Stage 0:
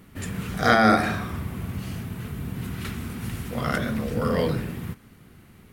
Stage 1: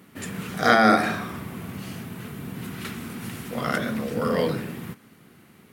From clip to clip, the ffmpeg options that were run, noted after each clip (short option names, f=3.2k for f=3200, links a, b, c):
-af "highpass=170,volume=1dB"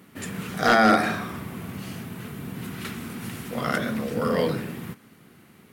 -af "asoftclip=type=hard:threshold=-10.5dB"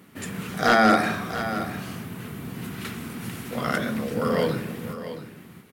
-af "aecho=1:1:676:0.266"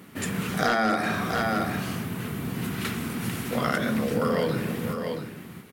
-af "acompressor=threshold=-25dB:ratio=6,volume=4dB"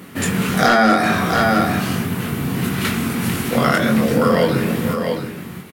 -filter_complex "[0:a]asplit=2[a][b];[b]adelay=22,volume=-5.5dB[c];[a][c]amix=inputs=2:normalize=0,volume=8.5dB"